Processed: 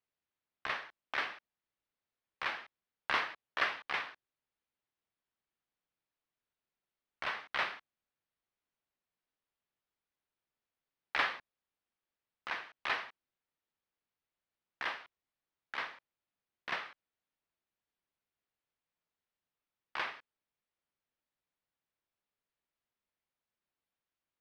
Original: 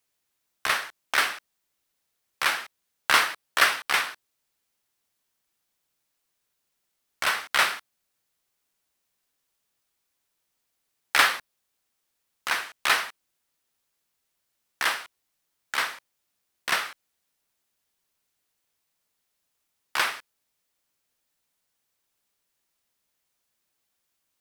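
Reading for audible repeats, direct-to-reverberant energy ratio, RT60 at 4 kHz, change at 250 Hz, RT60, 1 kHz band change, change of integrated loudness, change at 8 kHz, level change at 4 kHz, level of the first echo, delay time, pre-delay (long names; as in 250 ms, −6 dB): no echo audible, no reverb audible, no reverb audible, −9.0 dB, no reverb audible, −11.5 dB, −12.5 dB, −28.5 dB, −15.0 dB, no echo audible, no echo audible, no reverb audible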